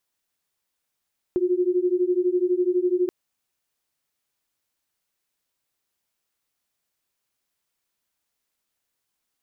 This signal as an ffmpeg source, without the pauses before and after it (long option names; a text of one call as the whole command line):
ffmpeg -f lavfi -i "aevalsrc='0.0794*(sin(2*PI*354*t)+sin(2*PI*366*t))':duration=1.73:sample_rate=44100" out.wav